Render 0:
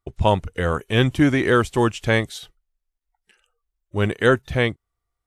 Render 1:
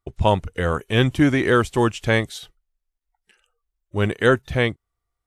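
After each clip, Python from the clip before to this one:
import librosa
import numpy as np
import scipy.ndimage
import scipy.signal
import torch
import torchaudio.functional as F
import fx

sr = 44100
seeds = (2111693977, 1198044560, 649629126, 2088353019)

y = x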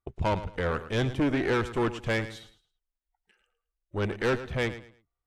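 y = fx.high_shelf(x, sr, hz=4500.0, db=-12.0)
y = fx.tube_stage(y, sr, drive_db=19.0, bias=0.7)
y = fx.echo_feedback(y, sr, ms=109, feedback_pct=26, wet_db=-13.5)
y = y * 10.0 ** (-2.0 / 20.0)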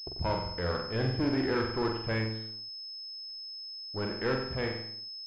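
y = fx.room_flutter(x, sr, wall_m=7.8, rt60_s=0.66)
y = fx.backlash(y, sr, play_db=-48.5)
y = fx.pwm(y, sr, carrier_hz=5200.0)
y = y * 10.0 ** (-5.0 / 20.0)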